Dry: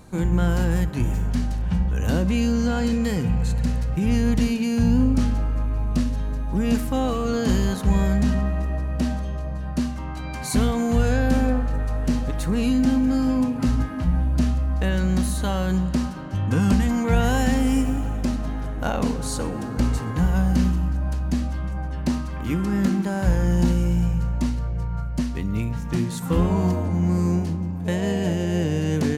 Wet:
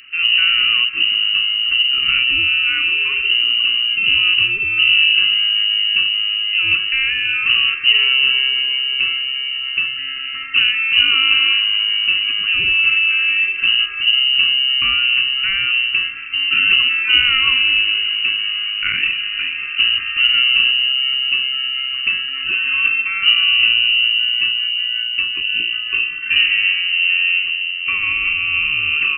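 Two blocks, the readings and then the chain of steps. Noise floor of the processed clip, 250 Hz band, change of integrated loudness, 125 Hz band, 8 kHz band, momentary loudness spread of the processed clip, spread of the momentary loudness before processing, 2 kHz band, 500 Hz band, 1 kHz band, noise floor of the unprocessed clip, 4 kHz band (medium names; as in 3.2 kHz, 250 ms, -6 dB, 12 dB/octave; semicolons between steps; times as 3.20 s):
-25 dBFS, under -25 dB, +9.5 dB, under -20 dB, under -40 dB, 7 LU, 7 LU, +22.0 dB, under -20 dB, -2.5 dB, -29 dBFS, +28.5 dB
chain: frequency inversion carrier 2.9 kHz; Chebyshev band-stop 420–1100 Hz, order 5; trim +5 dB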